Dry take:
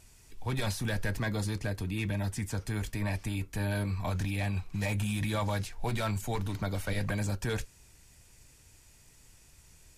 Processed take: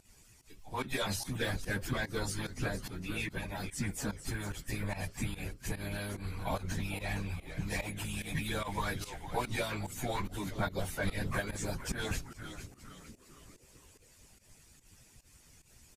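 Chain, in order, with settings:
time stretch by phase vocoder 1.6×
on a send: echo with shifted repeats 460 ms, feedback 46%, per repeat −130 Hz, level −10.5 dB
on the sum: harmonic and percussive parts rebalanced harmonic −14 dB
fake sidechain pumping 146 BPM, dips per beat 1, −16 dB, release 131 ms
level +6 dB

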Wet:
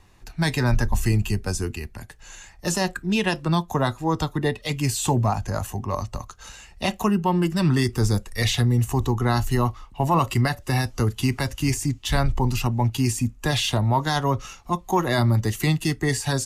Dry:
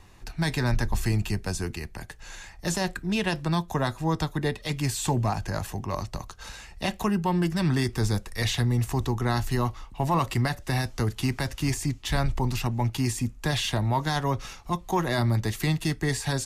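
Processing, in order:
noise reduction from a noise print of the clip's start 7 dB
level +4.5 dB

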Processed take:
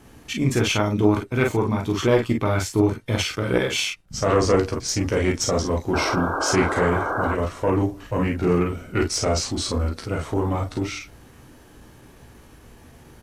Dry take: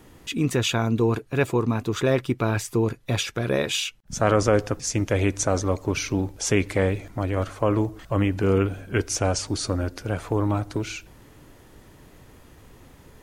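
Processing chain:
on a send: ambience of single reflections 15 ms −6.5 dB, 35 ms −7 dB, 47 ms −4.5 dB
on the sum: harmonic generator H 2 −9 dB, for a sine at −2.5 dBFS
sound drawn into the spectrogram noise, 0:05.92–0:07.34, 290–1,800 Hz −25 dBFS
pitch shifter −1.5 semitones

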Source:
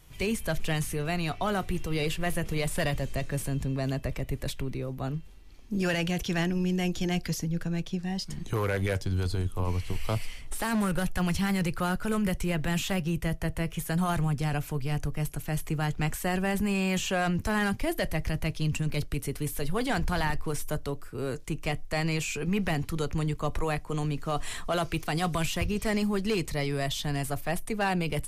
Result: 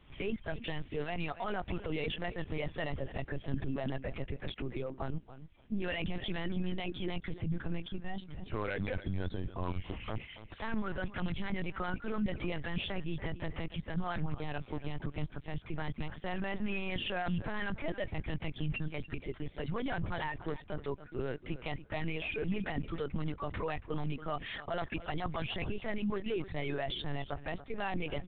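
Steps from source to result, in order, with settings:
reverb reduction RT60 1.5 s
high-pass filter 53 Hz 24 dB per octave
brickwall limiter −27 dBFS, peak gain reduction 9.5 dB
repeating echo 284 ms, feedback 17%, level −14 dB
linear-prediction vocoder at 8 kHz pitch kept
G.726 40 kbit/s 8,000 Hz

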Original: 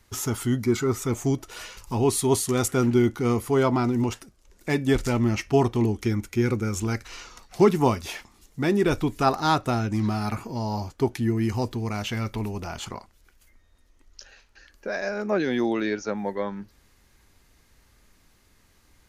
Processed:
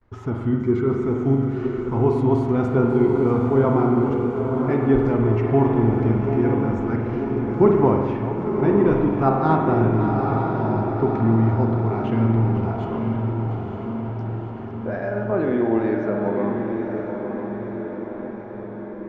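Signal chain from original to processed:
delay that plays each chunk backwards 425 ms, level −11 dB
noise gate with hold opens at −48 dBFS
low-pass filter 1,200 Hz 12 dB per octave
feedback delay with all-pass diffusion 953 ms, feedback 63%, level −5.5 dB
spring reverb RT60 1.5 s, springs 44 ms, chirp 70 ms, DRR 2 dB
level +1.5 dB

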